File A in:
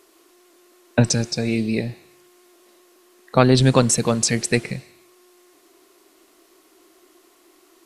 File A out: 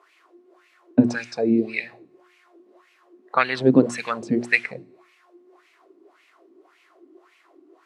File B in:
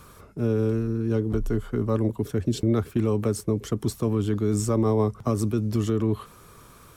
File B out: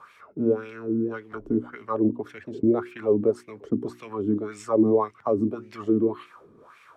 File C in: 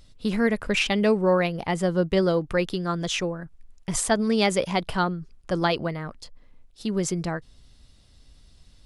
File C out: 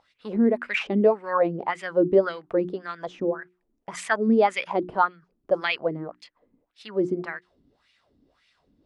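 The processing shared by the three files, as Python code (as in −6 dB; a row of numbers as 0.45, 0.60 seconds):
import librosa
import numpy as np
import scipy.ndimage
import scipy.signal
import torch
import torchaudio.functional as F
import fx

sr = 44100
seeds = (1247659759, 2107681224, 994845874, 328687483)

y = fx.wah_lfo(x, sr, hz=1.8, low_hz=260.0, high_hz=2400.0, q=3.7)
y = fx.hum_notches(y, sr, base_hz=60, count=6)
y = y * 10.0 ** (-26 / 20.0) / np.sqrt(np.mean(np.square(y)))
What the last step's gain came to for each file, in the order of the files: +9.5, +10.0, +9.5 decibels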